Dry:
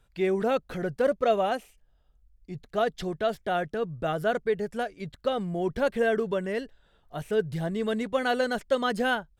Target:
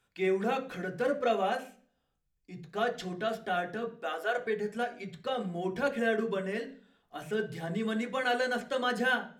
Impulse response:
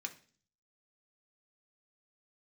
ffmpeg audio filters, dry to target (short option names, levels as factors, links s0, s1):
-filter_complex "[0:a]asettb=1/sr,asplit=3[s0][s1][s2];[s0]atrim=end=3.864[s3];[s1]atrim=start=3.86:end=4.38,asetpts=PTS-STARTPTS,afade=t=in:d=0.004:c=qsin,afade=t=out:st=0.516:d=0.004:c=qsin,highpass=f=400:w=0.5412,highpass=f=400:w=1.3066[s4];[s2]atrim=start=4.376[s5];[s3][s4]acrossfade=d=0.004:c1=hsin:c2=qsin[s6];[s6][s5]acrossfade=d=0.004:c1=qsin:c2=hsin[s7];[1:a]atrim=start_sample=2205,asetrate=43659,aresample=44100[s8];[s7][s8]afir=irnorm=-1:irlink=0"